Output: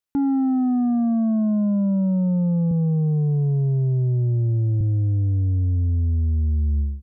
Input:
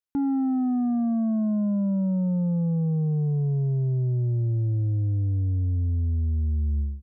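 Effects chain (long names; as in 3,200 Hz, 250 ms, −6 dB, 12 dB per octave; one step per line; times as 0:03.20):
0:02.71–0:04.81: high-pass filter 70 Hz 24 dB per octave
level +4 dB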